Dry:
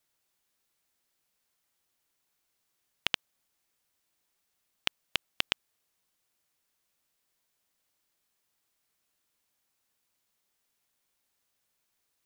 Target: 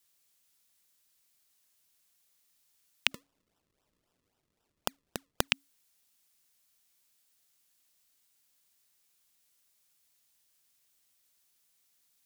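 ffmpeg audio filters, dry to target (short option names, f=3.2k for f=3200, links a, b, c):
-filter_complex "[0:a]afreqshift=-280,asettb=1/sr,asplit=3[a][b][c];[a]atrim=end=3.114[d];[b]atrim=start=3.11:end=5.48,asetpts=PTS-STARTPTS,afade=t=in:d=0.004:c=qsin,afade=t=out:st=2.366:d=0.004:c=qsin,acrusher=samples=40:mix=1:aa=0.000001:lfo=1:lforange=40:lforate=3.8[e];[c]atrim=start=5.476[f];[d][e]acrossfade=d=0.004:c1=hsin:c2=qsin[g];[g][f]acrossfade=d=0.004:c1=qsin:c2=hsin,highshelf=f=2.4k:g=11.5,volume=-3.5dB"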